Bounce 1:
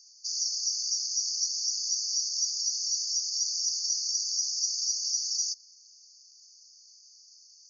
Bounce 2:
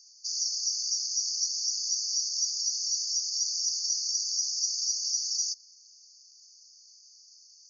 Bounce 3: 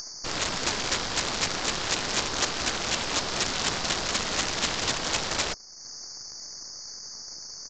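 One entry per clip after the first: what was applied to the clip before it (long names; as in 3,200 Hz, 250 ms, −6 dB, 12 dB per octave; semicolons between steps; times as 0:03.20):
no processing that can be heard
stylus tracing distortion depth 0.45 ms; upward compression, threshold −39 dBFS; downsampling to 16,000 Hz; level +7.5 dB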